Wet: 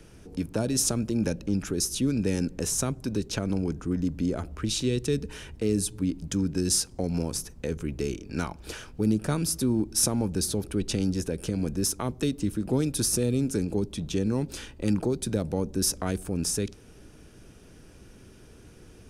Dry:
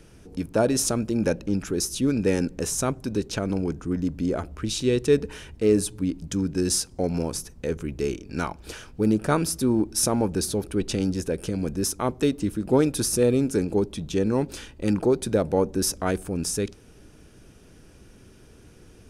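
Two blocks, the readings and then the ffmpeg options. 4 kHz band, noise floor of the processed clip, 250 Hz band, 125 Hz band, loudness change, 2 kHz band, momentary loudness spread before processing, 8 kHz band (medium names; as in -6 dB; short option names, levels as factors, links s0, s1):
-0.5 dB, -51 dBFS, -2.5 dB, -0.5 dB, -3.0 dB, -5.0 dB, 8 LU, 0.0 dB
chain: -filter_complex "[0:a]acrossover=split=250|3000[s0][s1][s2];[s1]acompressor=threshold=0.0282:ratio=4[s3];[s0][s3][s2]amix=inputs=3:normalize=0"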